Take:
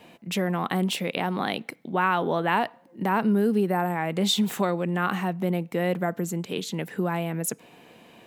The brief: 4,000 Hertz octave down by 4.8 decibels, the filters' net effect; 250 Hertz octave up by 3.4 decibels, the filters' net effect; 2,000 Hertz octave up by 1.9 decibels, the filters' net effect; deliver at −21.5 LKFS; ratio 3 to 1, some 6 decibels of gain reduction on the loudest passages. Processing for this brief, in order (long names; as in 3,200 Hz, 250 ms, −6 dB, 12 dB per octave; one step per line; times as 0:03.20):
parametric band 250 Hz +5 dB
parametric band 2,000 Hz +4 dB
parametric band 4,000 Hz −7.5 dB
downward compressor 3 to 1, threshold −23 dBFS
level +6.5 dB